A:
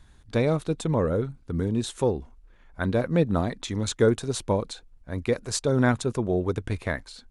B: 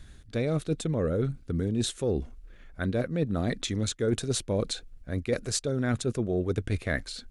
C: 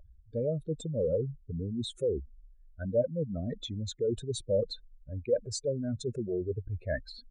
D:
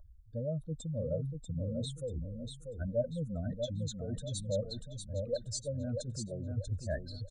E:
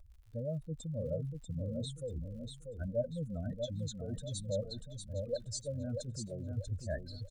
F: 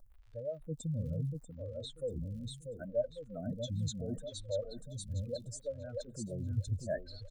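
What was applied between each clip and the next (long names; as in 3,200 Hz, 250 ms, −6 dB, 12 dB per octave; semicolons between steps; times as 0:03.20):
parametric band 940 Hz −12.5 dB 0.53 octaves; reversed playback; downward compressor 6 to 1, threshold −30 dBFS, peak gain reduction 13.5 dB; reversed playback; level +5.5 dB
expanding power law on the bin magnitudes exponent 2.6; parametric band 600 Hz +13 dB 0.6 octaves; level −6.5 dB
phaser with its sweep stopped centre 960 Hz, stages 4; repeating echo 639 ms, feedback 33%, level −5.5 dB
surface crackle 89 per second −55 dBFS; level −2 dB
phaser with staggered stages 0.73 Hz; level +4 dB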